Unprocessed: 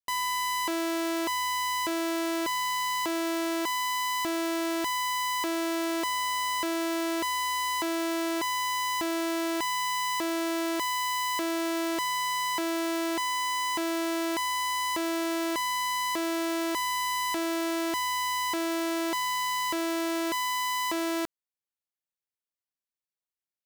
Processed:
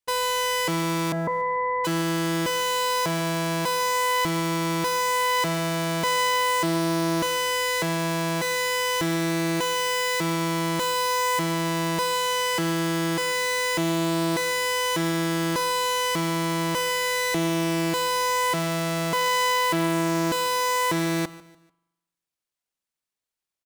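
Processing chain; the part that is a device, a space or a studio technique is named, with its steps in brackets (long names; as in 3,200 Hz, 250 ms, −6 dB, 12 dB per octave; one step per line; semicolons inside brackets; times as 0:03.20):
0:01.12–0:01.85: Butterworth low-pass 2,000 Hz 72 dB per octave
octave pedal (pitch-shifted copies added −12 semitones −1 dB)
repeating echo 147 ms, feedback 37%, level −19 dB
spring reverb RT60 1 s, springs 41 ms, chirp 55 ms, DRR 18.5 dB
level +2.5 dB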